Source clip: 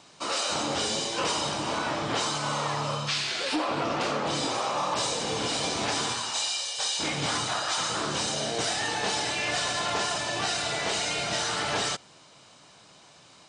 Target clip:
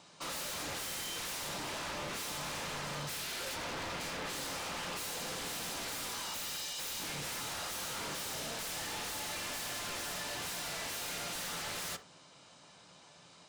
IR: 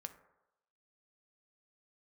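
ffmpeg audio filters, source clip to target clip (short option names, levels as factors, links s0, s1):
-filter_complex "[0:a]asettb=1/sr,asplit=3[s0][s1][s2];[s0]atrim=end=0.834[s3];[s1]atrim=start=0.83:end=1.34,asetpts=PTS-STARTPTS,afade=t=in:d=0.004:c=qsin,afade=t=out:st=0.506:d=0.004:c=qsin,aeval=exprs='val(0)+0.0282*sin(2*PI*3100*n/s)':c=same[s4];[s2]atrim=start=1.336[s5];[s3][s4]acrossfade=d=0.004:c1=hsin:c2=qsin[s6];[s6][s5]acrossfade=d=0.004:c1=qsin:c2=hsin,aeval=exprs='0.0299*(abs(mod(val(0)/0.0299+3,4)-2)-1)':c=same[s7];[1:a]atrim=start_sample=2205,atrim=end_sample=3528[s8];[s7][s8]afir=irnorm=-1:irlink=0"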